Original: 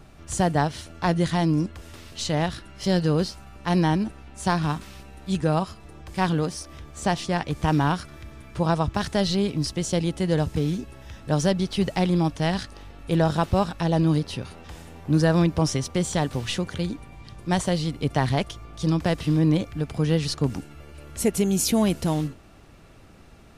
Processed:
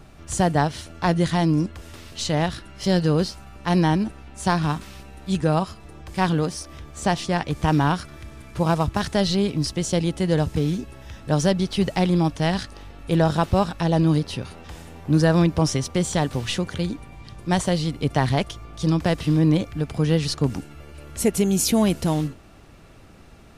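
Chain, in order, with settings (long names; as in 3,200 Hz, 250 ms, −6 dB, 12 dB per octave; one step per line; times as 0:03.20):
0:08.18–0:09.01: variable-slope delta modulation 64 kbit/s
level +2 dB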